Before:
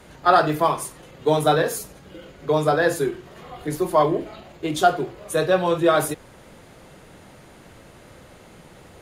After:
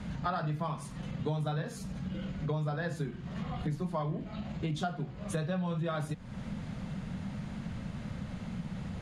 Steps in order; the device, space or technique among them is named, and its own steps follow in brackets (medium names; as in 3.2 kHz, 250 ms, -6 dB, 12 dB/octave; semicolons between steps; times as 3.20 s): jukebox (low-pass 5.9 kHz 12 dB/octave; resonant low shelf 270 Hz +9 dB, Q 3; compression 5:1, threshold -33 dBFS, peak gain reduction 19.5 dB)